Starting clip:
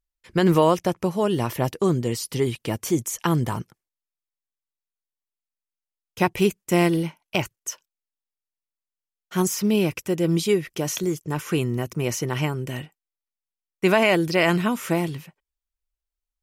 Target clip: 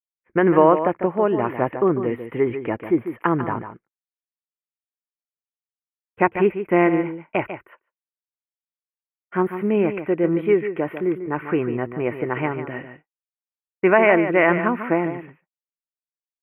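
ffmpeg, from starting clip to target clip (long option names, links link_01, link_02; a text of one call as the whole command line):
ffmpeg -i in.wav -af "asuperstop=centerf=5300:order=8:qfactor=0.6,aecho=1:1:147:0.316,agate=range=-33dB:threshold=-41dB:ratio=3:detection=peak,firequalizer=gain_entry='entry(140,0);entry(290,10);entry(2200,12);entry(4100,8);entry(6800,-21)':delay=0.05:min_phase=1,volume=-6.5dB" out.wav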